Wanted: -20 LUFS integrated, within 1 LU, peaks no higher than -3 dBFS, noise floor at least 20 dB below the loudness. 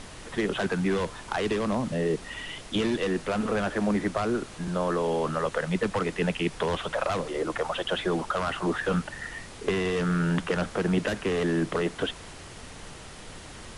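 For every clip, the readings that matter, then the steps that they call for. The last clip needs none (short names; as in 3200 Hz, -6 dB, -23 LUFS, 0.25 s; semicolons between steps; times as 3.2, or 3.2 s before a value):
noise floor -44 dBFS; noise floor target -49 dBFS; loudness -28.5 LUFS; peak -13.0 dBFS; loudness target -20.0 LUFS
-> noise print and reduce 6 dB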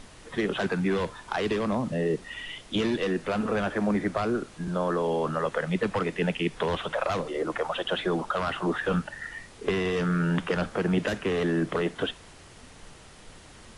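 noise floor -50 dBFS; loudness -28.5 LUFS; peak -13.0 dBFS; loudness target -20.0 LUFS
-> gain +8.5 dB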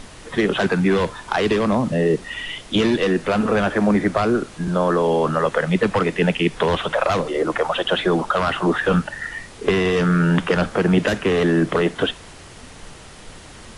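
loudness -20.0 LUFS; peak -4.5 dBFS; noise floor -41 dBFS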